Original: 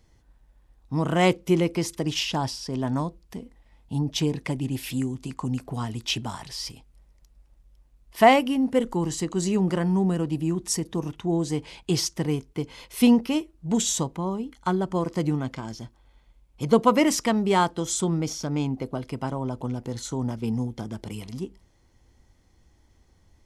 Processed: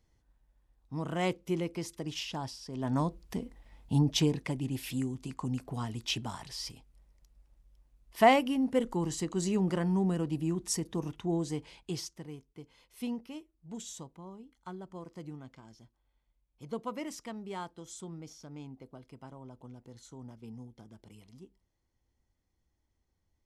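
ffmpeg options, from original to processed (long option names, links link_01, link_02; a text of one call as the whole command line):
ffmpeg -i in.wav -af "volume=1dB,afade=type=in:start_time=2.74:duration=0.47:silence=0.251189,afade=type=out:start_time=3.93:duration=0.54:silence=0.446684,afade=type=out:start_time=11.26:duration=0.98:silence=0.223872" out.wav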